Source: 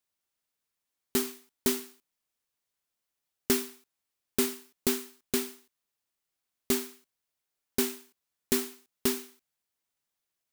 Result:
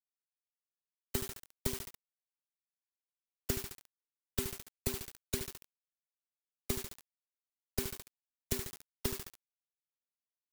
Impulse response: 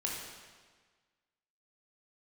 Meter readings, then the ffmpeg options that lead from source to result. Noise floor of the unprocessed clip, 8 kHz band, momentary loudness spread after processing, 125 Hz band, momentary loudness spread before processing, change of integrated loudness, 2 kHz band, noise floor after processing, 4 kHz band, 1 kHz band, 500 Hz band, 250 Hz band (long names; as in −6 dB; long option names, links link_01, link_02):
below −85 dBFS, −7.5 dB, 11 LU, +4.0 dB, 14 LU, −8.5 dB, −8.0 dB, below −85 dBFS, −8.0 dB, −7.5 dB, −10.5 dB, −12.0 dB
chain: -filter_complex "[0:a]equalizer=frequency=270:width_type=o:width=0.66:gain=-10,afftfilt=real='re*gte(hypot(re,im),0.0251)':imag='im*gte(hypot(re,im),0.0251)':win_size=1024:overlap=0.75,aecho=1:1:70|140|210|280|350|420:0.447|0.214|0.103|0.0494|0.0237|0.0114,acrossover=split=140[link_01][link_02];[link_02]acompressor=threshold=-45dB:ratio=6[link_03];[link_01][link_03]amix=inputs=2:normalize=0,acrusher=bits=7:mix=0:aa=0.000001,volume=8dB"